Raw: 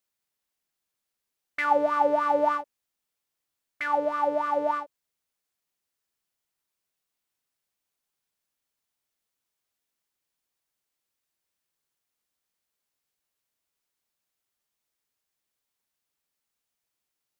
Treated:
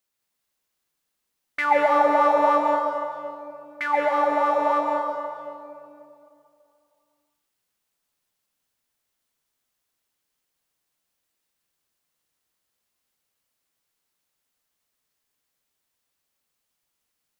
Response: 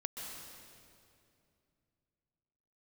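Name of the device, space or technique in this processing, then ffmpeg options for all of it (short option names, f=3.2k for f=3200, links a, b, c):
stairwell: -filter_complex "[1:a]atrim=start_sample=2205[a];[0:a][a]afir=irnorm=-1:irlink=0,volume=5.5dB"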